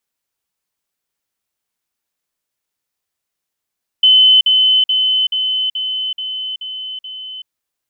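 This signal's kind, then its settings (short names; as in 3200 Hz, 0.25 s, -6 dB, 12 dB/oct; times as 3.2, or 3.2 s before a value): level ladder 3040 Hz -5.5 dBFS, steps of -3 dB, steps 8, 0.38 s 0.05 s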